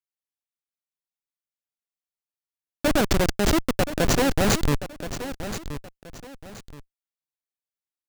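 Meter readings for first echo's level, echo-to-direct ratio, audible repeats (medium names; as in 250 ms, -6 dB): -11.5 dB, -11.0 dB, 2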